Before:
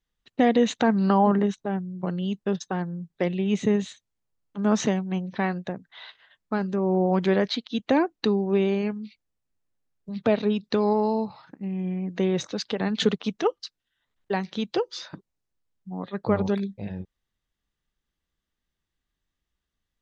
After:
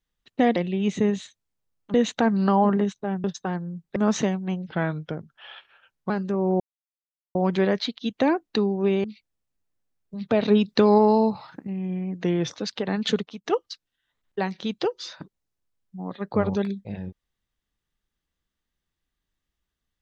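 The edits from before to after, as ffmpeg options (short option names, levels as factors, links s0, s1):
-filter_complex "[0:a]asplit=14[s0][s1][s2][s3][s4][s5][s6][s7][s8][s9][s10][s11][s12][s13];[s0]atrim=end=0.562[s14];[s1]atrim=start=3.218:end=4.602[s15];[s2]atrim=start=0.558:end=1.862[s16];[s3]atrim=start=2.498:end=3.222[s17];[s4]atrim=start=4.598:end=5.314[s18];[s5]atrim=start=5.31:end=6.54,asetpts=PTS-STARTPTS,asetrate=37926,aresample=44100,atrim=end_sample=63073,asetpts=PTS-STARTPTS[s19];[s6]atrim=start=6.536:end=7.04,asetpts=PTS-STARTPTS,afade=t=out:st=0.5:d=0.004:c=hsin,apad=pad_dur=0.75[s20];[s7]atrim=start=7.04:end=8.732,asetpts=PTS-STARTPTS,afade=t=in:d=0.004:c=hsin[s21];[s8]atrim=start=8.988:end=10.362[s22];[s9]atrim=start=10.358:end=11.622,asetpts=PTS-STARTPTS,volume=1.88[s23];[s10]atrim=start=11.618:end=12.194[s24];[s11]atrim=start=12.19:end=12.49,asetpts=PTS-STARTPTS,asetrate=41013,aresample=44100[s25];[s12]atrim=start=12.486:end=13.37,asetpts=PTS-STARTPTS,afade=t=out:st=0.504:d=0.38:silence=0.0841395[s26];[s13]atrim=start=13.37,asetpts=PTS-STARTPTS,afade=t=in:d=0.004:c=hsin:silence=0.0841395[s27];[s14][s15]acrossfade=d=0.004:c1=hsin:c2=hsin[s28];[s28][s16]acrossfade=d=0.004:c1=hsin:c2=hsin[s29];[s29][s17]acrossfade=d=0.004:c1=hsin:c2=hsin[s30];[s30][s18]acrossfade=d=0.004:c1=hsin:c2=hsin[s31];[s31][s19]acrossfade=d=0.004:c1=hsin:c2=hsin[s32];[s20][s21]concat=n=2:v=0:a=1[s33];[s32][s33]acrossfade=d=0.004:c1=hsin:c2=hsin[s34];[s34][s22]acrossfade=d=0.004:c1=hsin:c2=hsin[s35];[s35][s23]acrossfade=d=0.004:c1=hsin:c2=hsin[s36];[s36][s24]acrossfade=d=0.004:c1=hsin:c2=hsin[s37];[s37][s25]acrossfade=d=0.004:c1=hsin:c2=hsin[s38];[s26][s27]concat=n=2:v=0:a=1[s39];[s38][s39]acrossfade=d=0.004:c1=hsin:c2=hsin"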